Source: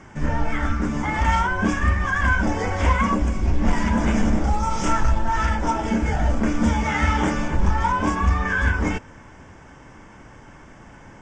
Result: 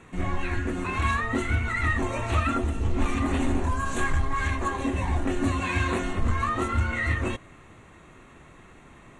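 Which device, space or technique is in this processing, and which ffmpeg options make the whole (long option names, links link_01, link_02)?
nightcore: -af "asetrate=53802,aresample=44100,volume=-5.5dB"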